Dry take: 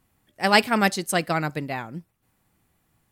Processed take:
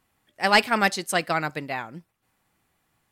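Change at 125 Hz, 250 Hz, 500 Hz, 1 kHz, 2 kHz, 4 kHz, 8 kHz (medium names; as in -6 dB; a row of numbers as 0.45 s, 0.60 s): -5.5 dB, -4.5 dB, -1.5 dB, 0.0 dB, +1.0 dB, 0.0 dB, -1.5 dB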